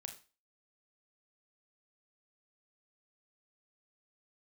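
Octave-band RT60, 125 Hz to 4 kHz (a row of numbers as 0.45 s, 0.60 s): 0.30 s, 0.35 s, 0.35 s, 0.35 s, 0.35 s, 0.35 s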